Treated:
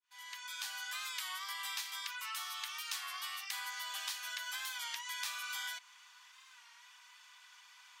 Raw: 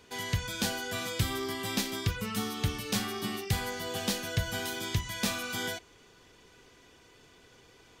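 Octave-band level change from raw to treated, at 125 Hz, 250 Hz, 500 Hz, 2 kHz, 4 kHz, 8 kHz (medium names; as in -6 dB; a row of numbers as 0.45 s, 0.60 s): under -40 dB, under -40 dB, -32.5 dB, -4.5 dB, -5.0 dB, -6.0 dB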